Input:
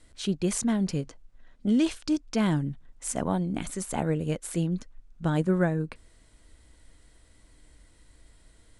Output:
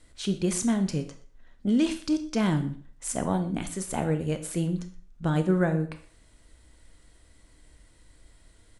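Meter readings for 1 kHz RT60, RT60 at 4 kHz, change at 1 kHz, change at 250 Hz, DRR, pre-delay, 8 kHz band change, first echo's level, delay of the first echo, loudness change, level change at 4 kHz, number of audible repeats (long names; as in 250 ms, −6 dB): 0.45 s, 0.40 s, +0.5 dB, +0.5 dB, 8.0 dB, 15 ms, +0.5 dB, −23.0 dB, 123 ms, +0.5 dB, +0.5 dB, 1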